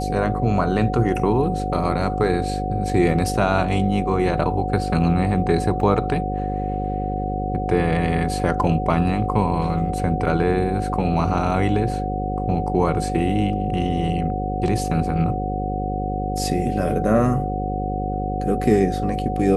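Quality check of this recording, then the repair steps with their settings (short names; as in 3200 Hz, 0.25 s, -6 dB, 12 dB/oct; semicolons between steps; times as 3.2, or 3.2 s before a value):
buzz 50 Hz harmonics 11 -26 dBFS
tone 740 Hz -26 dBFS
5.81 gap 4 ms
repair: notch 740 Hz, Q 30; de-hum 50 Hz, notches 11; interpolate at 5.81, 4 ms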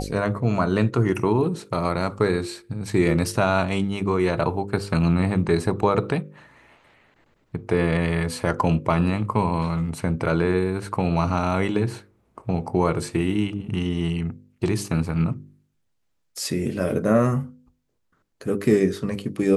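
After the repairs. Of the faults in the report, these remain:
none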